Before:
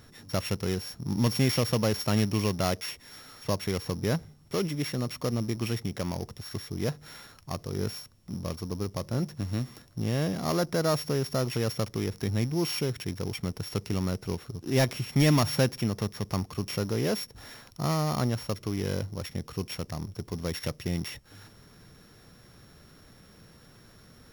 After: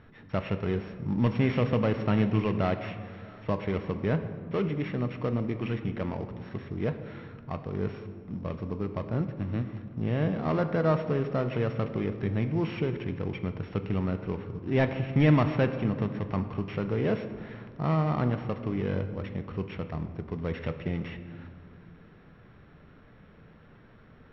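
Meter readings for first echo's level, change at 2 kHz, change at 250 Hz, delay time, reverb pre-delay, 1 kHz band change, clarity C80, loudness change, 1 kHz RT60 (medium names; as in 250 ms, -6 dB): no echo, 0.0 dB, +1.5 dB, no echo, 5 ms, +0.5 dB, 11.5 dB, 0.0 dB, 2.0 s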